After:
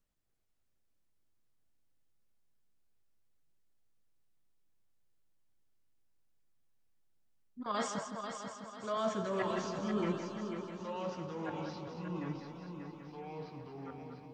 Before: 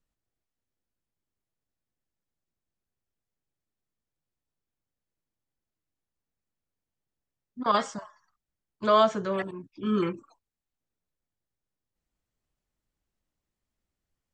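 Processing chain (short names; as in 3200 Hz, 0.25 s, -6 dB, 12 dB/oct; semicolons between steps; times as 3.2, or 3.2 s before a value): reverse; compressor 6:1, threshold -33 dBFS, peak gain reduction 16 dB; reverse; multi-head echo 0.164 s, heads first and third, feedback 63%, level -8 dB; flange 1.1 Hz, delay 4.3 ms, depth 5.4 ms, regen +79%; echoes that change speed 0.291 s, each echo -3 st, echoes 2, each echo -6 dB; gain +4 dB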